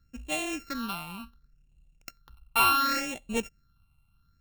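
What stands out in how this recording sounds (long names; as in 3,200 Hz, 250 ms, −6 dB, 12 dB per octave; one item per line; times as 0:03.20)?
a buzz of ramps at a fixed pitch in blocks of 32 samples
phaser sweep stages 6, 0.69 Hz, lowest notch 440–1,400 Hz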